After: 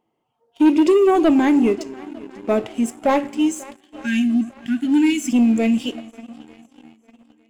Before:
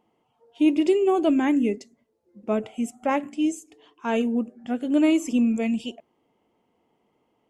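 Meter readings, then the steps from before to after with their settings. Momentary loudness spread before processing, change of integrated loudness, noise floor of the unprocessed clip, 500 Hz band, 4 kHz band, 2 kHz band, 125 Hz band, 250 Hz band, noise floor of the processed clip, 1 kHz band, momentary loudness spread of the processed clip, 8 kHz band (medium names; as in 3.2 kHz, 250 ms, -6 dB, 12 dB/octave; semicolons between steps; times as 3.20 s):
11 LU, +5.5 dB, -71 dBFS, +5.5 dB, +6.0 dB, +6.0 dB, no reading, +5.5 dB, -72 dBFS, +5.5 dB, 16 LU, +7.0 dB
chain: spectral selection erased 3.20–5.32 s, 320–1400 Hz; on a send: shuffle delay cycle 901 ms, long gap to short 1.5:1, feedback 45%, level -22 dB; on the sum: two-slope reverb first 0.31 s, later 2.2 s, DRR 13.5 dB; waveshaping leveller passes 2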